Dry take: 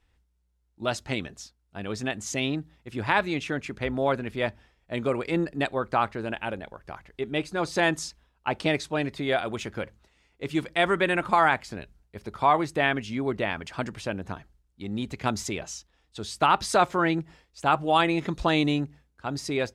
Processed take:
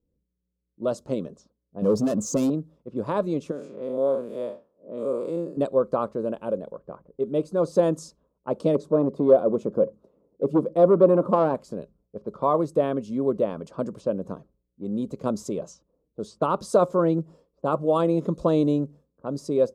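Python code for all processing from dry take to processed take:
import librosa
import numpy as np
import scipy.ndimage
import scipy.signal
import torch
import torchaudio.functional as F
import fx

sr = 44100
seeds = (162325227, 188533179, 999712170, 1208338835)

y = fx.chain(x, sr, fx.spec_expand(power=1.5),
    fx.leveller(passes=3),
    fx.overload_stage(gain_db=22.0), at=(1.82, 2.5))
y = fx.chain(y, sr, fx.spec_blur(span_ms=143.0),
    fx.highpass(hz=420.0, slope=6),
    fx.high_shelf(hz=5100.0, db=7.0), at=(3.51, 5.57))
y = fx.chain(y, sr, fx.highpass(hz=200.0, slope=6),
    fx.tilt_shelf(db=9.0, hz=1300.0),
    fx.transformer_sat(knee_hz=1100.0), at=(8.75, 11.55))
y = fx.curve_eq(y, sr, hz=(100.0, 170.0, 350.0, 540.0, 790.0, 1100.0, 1900.0, 4100.0, 7400.0), db=(0, 11, 5, 13, -8, 1, -23, -11, -5))
y = fx.env_lowpass(y, sr, base_hz=310.0, full_db=-25.0)
y = fx.low_shelf(y, sr, hz=160.0, db=-11.0)
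y = y * 10.0 ** (-1.0 / 20.0)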